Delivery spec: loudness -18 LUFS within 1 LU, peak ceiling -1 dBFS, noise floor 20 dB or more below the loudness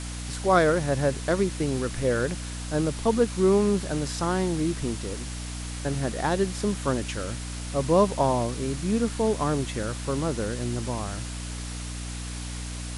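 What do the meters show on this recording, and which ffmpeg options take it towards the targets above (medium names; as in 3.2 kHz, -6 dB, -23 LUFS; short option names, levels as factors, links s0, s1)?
hum 60 Hz; highest harmonic 300 Hz; hum level -32 dBFS; noise floor -35 dBFS; noise floor target -47 dBFS; loudness -27.0 LUFS; peak level -8.0 dBFS; loudness target -18.0 LUFS
-> -af "bandreject=f=60:t=h:w=4,bandreject=f=120:t=h:w=4,bandreject=f=180:t=h:w=4,bandreject=f=240:t=h:w=4,bandreject=f=300:t=h:w=4"
-af "afftdn=nr=12:nf=-35"
-af "volume=2.82,alimiter=limit=0.891:level=0:latency=1"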